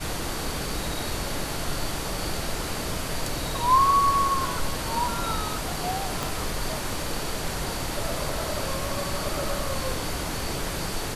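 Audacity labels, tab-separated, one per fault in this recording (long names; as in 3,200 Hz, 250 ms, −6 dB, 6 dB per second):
6.230000	6.230000	click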